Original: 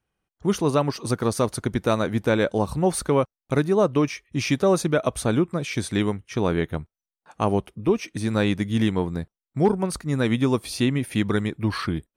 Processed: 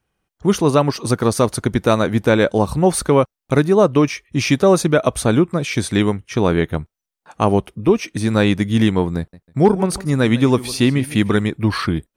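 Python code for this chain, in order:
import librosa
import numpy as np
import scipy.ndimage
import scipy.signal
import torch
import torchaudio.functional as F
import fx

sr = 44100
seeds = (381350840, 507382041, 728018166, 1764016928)

y = fx.echo_warbled(x, sr, ms=150, feedback_pct=30, rate_hz=2.8, cents=114, wet_db=-17.5, at=(9.18, 11.44))
y = F.gain(torch.from_numpy(y), 6.5).numpy()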